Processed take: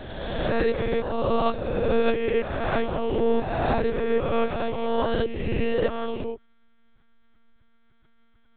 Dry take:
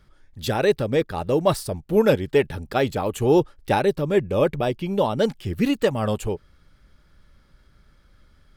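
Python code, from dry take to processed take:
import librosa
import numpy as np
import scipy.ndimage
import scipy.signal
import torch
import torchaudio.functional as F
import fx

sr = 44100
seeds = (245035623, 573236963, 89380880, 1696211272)

y = fx.spec_swells(x, sr, rise_s=1.84)
y = fx.lpc_monotone(y, sr, seeds[0], pitch_hz=230.0, order=10)
y = F.gain(torch.from_numpy(y), -7.0).numpy()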